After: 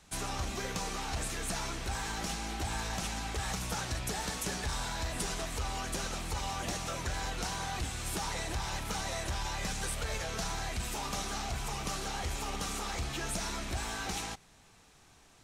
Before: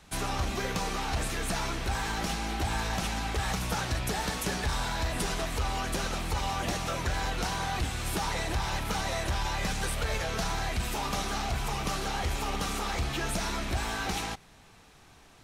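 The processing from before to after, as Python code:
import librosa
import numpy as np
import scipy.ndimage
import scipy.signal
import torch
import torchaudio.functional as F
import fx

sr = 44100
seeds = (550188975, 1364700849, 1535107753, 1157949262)

y = fx.peak_eq(x, sr, hz=7400.0, db=6.0, octaves=1.1)
y = y * librosa.db_to_amplitude(-5.5)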